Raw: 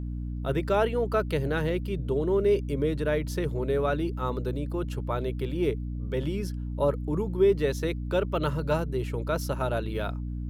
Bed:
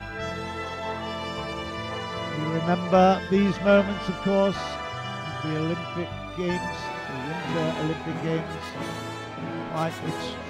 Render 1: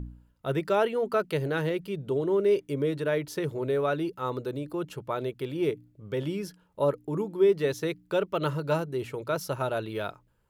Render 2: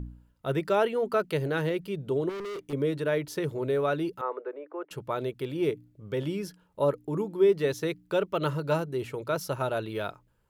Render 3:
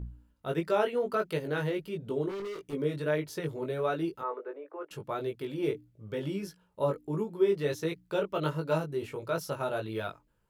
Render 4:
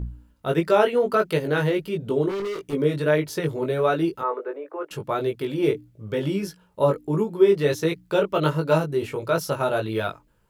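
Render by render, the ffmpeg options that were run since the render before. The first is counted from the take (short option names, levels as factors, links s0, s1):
-af "bandreject=f=60:t=h:w=4,bandreject=f=120:t=h:w=4,bandreject=f=180:t=h:w=4,bandreject=f=240:t=h:w=4,bandreject=f=300:t=h:w=4"
-filter_complex "[0:a]asettb=1/sr,asplit=3[s0][s1][s2];[s0]atrim=end=2.294[s3];[s1]atrim=start=2.29:end=2.73,asetpts=PTS-STARTPTS,afade=t=in:d=0.004:c=qsin,afade=t=out:st=0.436:d=0.004:c=qsin,volume=53.1,asoftclip=hard,volume=0.0188[s4];[s2]atrim=start=2.726[s5];[s3][s4]acrossfade=d=0.004:c1=hsin:c2=qsin[s6];[s6][s5]acrossfade=d=0.004:c1=qsin:c2=hsin,asettb=1/sr,asplit=3[s7][s8][s9];[s7]atrim=end=4.214[s10];[s8]atrim=start=4.21:end=4.91,asetpts=PTS-STARTPTS,afade=t=in:d=0.004:c=qsin,afade=t=out:st=0.696:d=0.004:c=qsin,asuperpass=centerf=920:order=8:qfactor=0.53[s11];[s9]atrim=start=4.906[s12];[s10][s11]acrossfade=d=0.004:c1=hsin:c2=qsin[s13];[s13][s12]acrossfade=d=0.004:c1=qsin:c2=hsin"
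-af "flanger=delay=18:depth=2.6:speed=1.5"
-af "volume=2.82"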